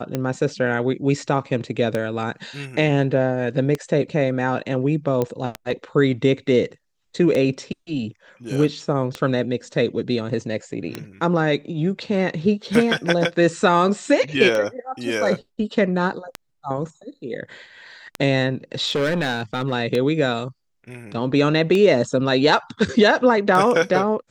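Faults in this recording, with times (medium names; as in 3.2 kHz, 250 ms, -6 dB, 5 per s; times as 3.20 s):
tick 33 1/3 rpm -10 dBFS
5.22 s: pop -10 dBFS
18.87–19.73 s: clipped -17 dBFS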